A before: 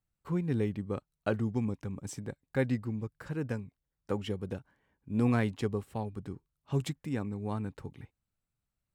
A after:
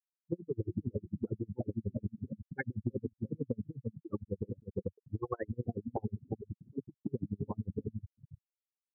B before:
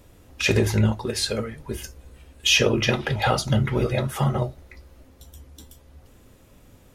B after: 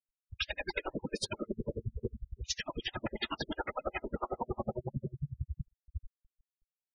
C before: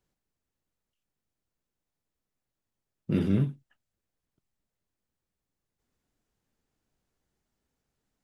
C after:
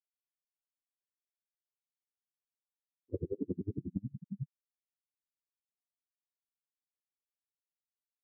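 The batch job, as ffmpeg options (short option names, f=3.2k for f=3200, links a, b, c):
-filter_complex "[0:a]lowshelf=f=79:g=-2.5,asplit=2[a][b];[b]adelay=338,lowpass=f=1.7k:p=1,volume=-6dB,asplit=2[c][d];[d]adelay=338,lowpass=f=1.7k:p=1,volume=0.4,asplit=2[e][f];[f]adelay=338,lowpass=f=1.7k:p=1,volume=0.4,asplit=2[g][h];[h]adelay=338,lowpass=f=1.7k:p=1,volume=0.4,asplit=2[i][j];[j]adelay=338,lowpass=f=1.7k:p=1,volume=0.4[k];[c][e][g][i][k]amix=inputs=5:normalize=0[l];[a][l]amix=inputs=2:normalize=0,afftfilt=real='re*lt(hypot(re,im),0.224)':imag='im*lt(hypot(re,im),0.224)':win_size=1024:overlap=0.75,asplit=2[m][n];[n]aeval=exprs='(mod(23.7*val(0)+1,2)-1)/23.7':c=same,volume=-6dB[o];[m][o]amix=inputs=2:normalize=0,afwtdn=0.0158,lowpass=f=3.8k:p=1,aemphasis=mode=production:type=50kf,afftfilt=real='re*gte(hypot(re,im),0.0631)':imag='im*gte(hypot(re,im),0.0631)':win_size=1024:overlap=0.75,acompressor=threshold=-40dB:ratio=12,aeval=exprs='val(0)*pow(10,-39*(0.5-0.5*cos(2*PI*11*n/s))/20)':c=same,volume=12.5dB"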